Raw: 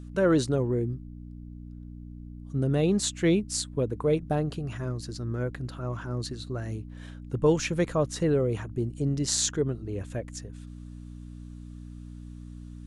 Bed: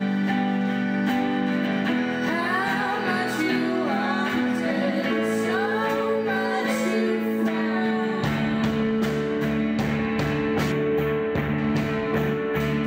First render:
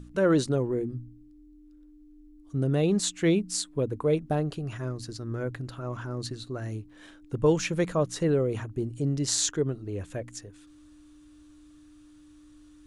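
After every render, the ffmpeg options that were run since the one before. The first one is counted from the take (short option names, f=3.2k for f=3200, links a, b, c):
-af "bandreject=f=60:t=h:w=4,bandreject=f=120:t=h:w=4,bandreject=f=180:t=h:w=4,bandreject=f=240:t=h:w=4"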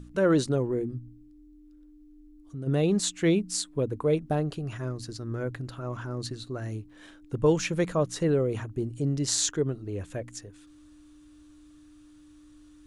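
-filter_complex "[0:a]asplit=3[a][b][c];[a]afade=t=out:st=0.98:d=0.02[d];[b]acompressor=threshold=-40dB:ratio=2:attack=3.2:release=140:knee=1:detection=peak,afade=t=in:st=0.98:d=0.02,afade=t=out:st=2.66:d=0.02[e];[c]afade=t=in:st=2.66:d=0.02[f];[d][e][f]amix=inputs=3:normalize=0"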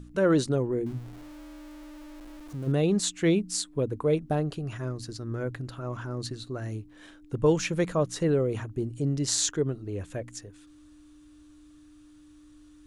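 -filter_complex "[0:a]asettb=1/sr,asplit=3[a][b][c];[a]atrim=end=0.864[d];[b]atrim=start=0.86:end=2.72,asetpts=PTS-STARTPTS,afade=t=in:d=0.004:c=qsin,afade=t=out:st=1.856:d=0.004:c=qsin,aeval=exprs='val(0)+0.5*0.0075*sgn(val(0))':c=same[e];[c]atrim=start=2.716[f];[d][e]acrossfade=d=0.004:c1=hsin:c2=qsin[g];[g][f]acrossfade=d=0.004:c1=qsin:c2=hsin"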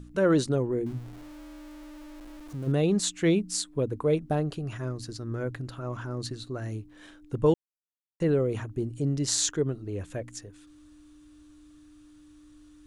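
-filter_complex "[0:a]asplit=3[a][b][c];[a]atrim=end=7.54,asetpts=PTS-STARTPTS,afade=t=out:st=7.536:d=0.004:c=hsin[d];[b]atrim=start=7.54:end=8.2,asetpts=PTS-STARTPTS,volume=0[e];[c]atrim=start=8.2,asetpts=PTS-STARTPTS,afade=t=in:d=0.004:c=hsin[f];[d][e][f]concat=n=3:v=0:a=1"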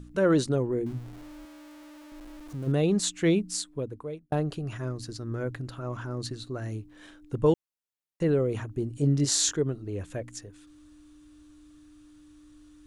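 -filter_complex "[0:a]asettb=1/sr,asplit=3[a][b][c];[a]atrim=end=1.454[d];[b]atrim=start=1.45:end=2.12,asetpts=PTS-STARTPTS,afade=t=in:d=0.004:c=qsin,afade=t=out:st=0.666:d=0.004:c=qsin,highpass=f=320:p=1[e];[c]atrim=start=2.116[f];[d][e]acrossfade=d=0.004:c1=hsin:c2=qsin[g];[g][f]acrossfade=d=0.004:c1=qsin:c2=hsin,asettb=1/sr,asplit=3[h][i][j];[h]atrim=end=8.954[k];[i]atrim=start=8.95:end=9.54,asetpts=PTS-STARTPTS,afade=t=in:d=0.004:c=qsin,afade=t=out:st=0.586:d=0.004:c=qsin,asplit=2[l][m];[m]adelay=21,volume=-3dB[n];[l][n]amix=inputs=2:normalize=0,atrim=end_sample=26019[o];[j]atrim=start=9.536[p];[k][o]acrossfade=d=0.004:c1=hsin:c2=qsin[q];[q][p]acrossfade=d=0.004:c1=qsin:c2=hsin,asplit=2[r][s];[r]atrim=end=4.32,asetpts=PTS-STARTPTS,afade=t=out:st=3.41:d=0.91[t];[s]atrim=start=4.32,asetpts=PTS-STARTPTS,afade=t=in:d=0.004:c=hsin[u];[t][u]concat=n=2:v=0:a=1"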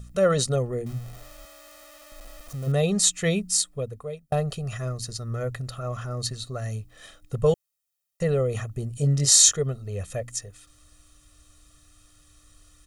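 -af "highshelf=f=4.9k:g=11,aecho=1:1:1.6:0.91"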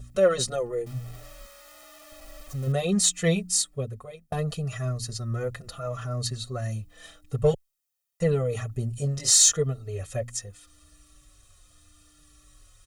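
-filter_complex "[0:a]asplit=2[a][b];[b]asoftclip=type=tanh:threshold=-18dB,volume=-10dB[c];[a][c]amix=inputs=2:normalize=0,asplit=2[d][e];[e]adelay=4.8,afreqshift=-0.8[f];[d][f]amix=inputs=2:normalize=1"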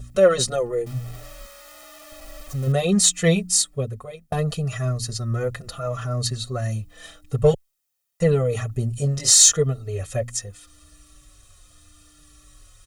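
-af "volume=5dB,alimiter=limit=-2dB:level=0:latency=1"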